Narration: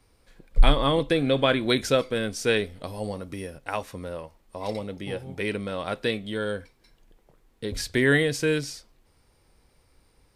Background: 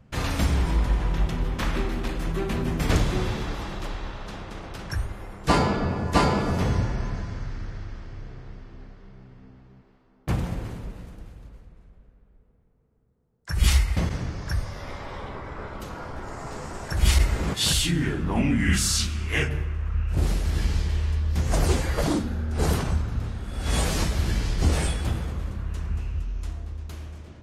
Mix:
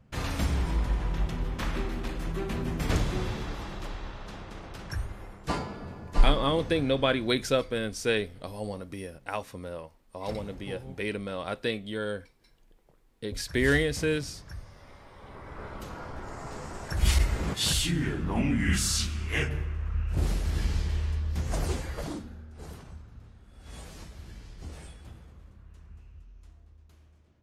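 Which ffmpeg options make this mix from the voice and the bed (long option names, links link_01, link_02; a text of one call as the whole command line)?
ffmpeg -i stem1.wav -i stem2.wav -filter_complex "[0:a]adelay=5600,volume=-3.5dB[link_01];[1:a]volume=6dB,afade=type=out:start_time=5.25:duration=0.41:silence=0.316228,afade=type=in:start_time=15.16:duration=0.54:silence=0.281838,afade=type=out:start_time=20.96:duration=1.61:silence=0.149624[link_02];[link_01][link_02]amix=inputs=2:normalize=0" out.wav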